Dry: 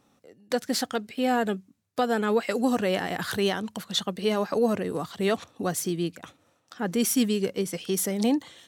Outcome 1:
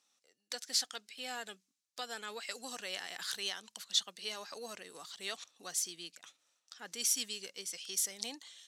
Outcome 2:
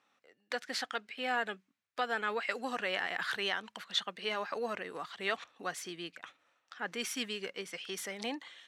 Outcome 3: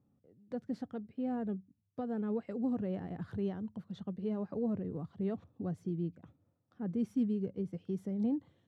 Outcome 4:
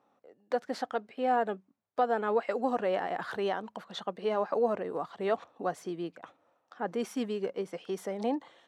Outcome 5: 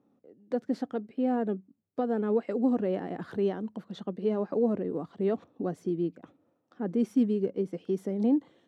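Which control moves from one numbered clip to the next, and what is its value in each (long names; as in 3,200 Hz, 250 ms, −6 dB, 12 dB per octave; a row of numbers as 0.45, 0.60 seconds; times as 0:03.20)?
resonant band-pass, frequency: 5,800, 2,000, 100, 780, 300 Hertz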